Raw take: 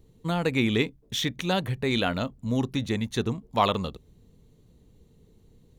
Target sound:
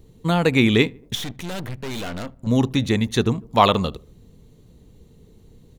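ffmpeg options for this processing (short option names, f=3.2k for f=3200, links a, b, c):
-filter_complex "[0:a]asettb=1/sr,asplit=3[a][b][c];[a]atrim=end=1.154[d];[b]atrim=start=1.15:end=2.47,asetpts=PTS-STARTPTS,afade=t=in:d=0.004:c=qsin,afade=t=out:st=1.316:d=0.004:c=qsin,aeval=exprs='(tanh(63.1*val(0)+0.8)-tanh(0.8))/63.1':c=same[e];[c]atrim=start=2.466[f];[d][e]acrossfade=d=0.004:c1=hsin:c2=qsin[g];[g][f]acrossfade=d=0.004:c1=qsin:c2=hsin,asplit=2[h][i];[i]adelay=76,lowpass=f=1.4k:p=1,volume=-24dB,asplit=2[j][k];[k]adelay=76,lowpass=f=1.4k:p=1,volume=0.53,asplit=2[l][m];[m]adelay=76,lowpass=f=1.4k:p=1,volume=0.53[n];[h][j][l][n]amix=inputs=4:normalize=0,volume=7.5dB"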